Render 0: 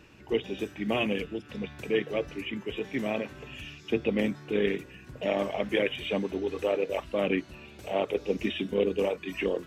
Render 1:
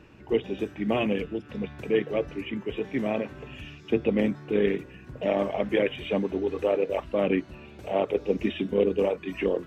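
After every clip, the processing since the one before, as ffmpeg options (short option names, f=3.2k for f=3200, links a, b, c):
-af "highshelf=f=2.6k:g=-11,volume=3.5dB"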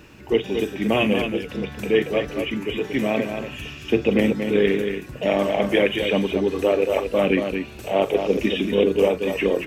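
-filter_complex "[0:a]crystalizer=i=3:c=0,asplit=2[a][b];[b]aecho=0:1:41|229:0.188|0.473[c];[a][c]amix=inputs=2:normalize=0,volume=4.5dB"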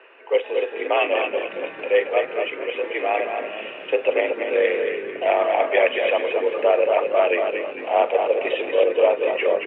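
-filter_complex "[0:a]highpass=f=400:t=q:w=0.5412,highpass=f=400:t=q:w=1.307,lowpass=f=2.7k:t=q:w=0.5176,lowpass=f=2.7k:t=q:w=0.7071,lowpass=f=2.7k:t=q:w=1.932,afreqshift=62,asplit=7[a][b][c][d][e][f][g];[b]adelay=221,afreqshift=-39,volume=-10dB[h];[c]adelay=442,afreqshift=-78,volume=-15dB[i];[d]adelay=663,afreqshift=-117,volume=-20.1dB[j];[e]adelay=884,afreqshift=-156,volume=-25.1dB[k];[f]adelay=1105,afreqshift=-195,volume=-30.1dB[l];[g]adelay=1326,afreqshift=-234,volume=-35.2dB[m];[a][h][i][j][k][l][m]amix=inputs=7:normalize=0,volume=2.5dB"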